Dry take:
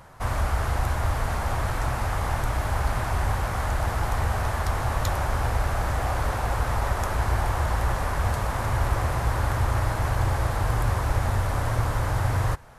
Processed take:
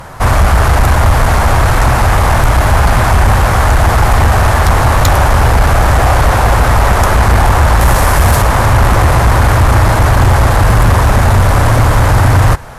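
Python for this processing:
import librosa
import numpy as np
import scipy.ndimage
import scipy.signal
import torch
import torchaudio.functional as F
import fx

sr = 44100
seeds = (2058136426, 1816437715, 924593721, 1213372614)

y = fx.high_shelf(x, sr, hz=6400.0, db=9.0, at=(7.81, 8.42))
y = fx.fold_sine(y, sr, drive_db=7, ceiling_db=-11.0)
y = y * 10.0 ** (8.0 / 20.0)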